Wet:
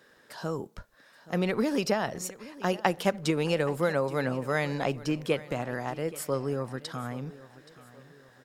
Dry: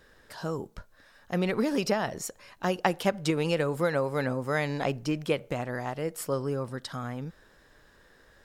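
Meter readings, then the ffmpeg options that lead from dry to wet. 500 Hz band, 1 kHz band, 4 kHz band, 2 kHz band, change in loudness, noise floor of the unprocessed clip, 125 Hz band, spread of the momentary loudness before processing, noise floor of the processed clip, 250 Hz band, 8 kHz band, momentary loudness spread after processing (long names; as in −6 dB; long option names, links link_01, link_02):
0.0 dB, 0.0 dB, 0.0 dB, 0.0 dB, 0.0 dB, −60 dBFS, −0.5 dB, 10 LU, −60 dBFS, 0.0 dB, 0.0 dB, 10 LU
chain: -filter_complex "[0:a]acrossover=split=120[link_01][link_02];[link_01]aeval=exprs='sgn(val(0))*max(abs(val(0))-0.00119,0)':channel_layout=same[link_03];[link_03][link_02]amix=inputs=2:normalize=0,aecho=1:1:825|1650|2475:0.119|0.0499|0.021"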